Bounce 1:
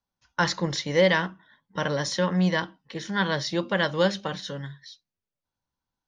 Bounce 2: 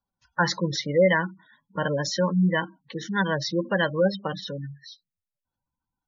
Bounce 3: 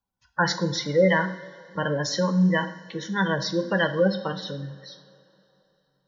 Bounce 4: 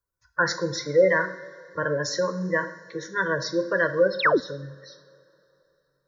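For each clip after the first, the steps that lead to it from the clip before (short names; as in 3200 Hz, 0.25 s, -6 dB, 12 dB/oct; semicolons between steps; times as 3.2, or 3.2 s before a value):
spectral gate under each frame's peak -15 dB strong; gain +1.5 dB
two-slope reverb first 0.61 s, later 3.3 s, from -17 dB, DRR 7 dB
painted sound fall, 4.19–4.4, 200–4600 Hz -19 dBFS; fixed phaser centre 800 Hz, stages 6; gain +2.5 dB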